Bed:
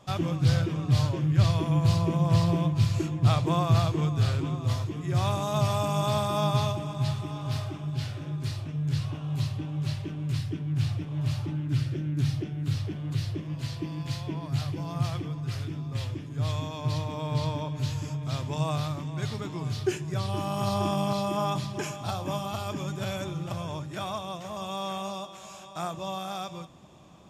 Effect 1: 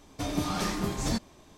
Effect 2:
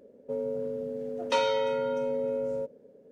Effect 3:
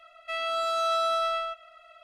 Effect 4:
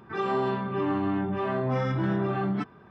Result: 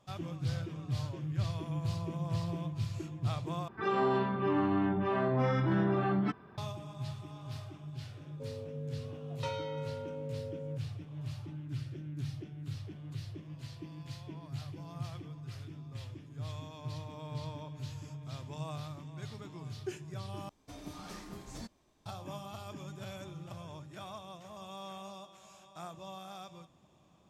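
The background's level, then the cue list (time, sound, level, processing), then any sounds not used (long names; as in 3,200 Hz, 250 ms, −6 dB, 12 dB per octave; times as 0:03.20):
bed −12 dB
0:03.68: overwrite with 4 −2.5 dB
0:08.11: mix in 2 −12.5 dB
0:20.49: overwrite with 1 −16 dB
not used: 3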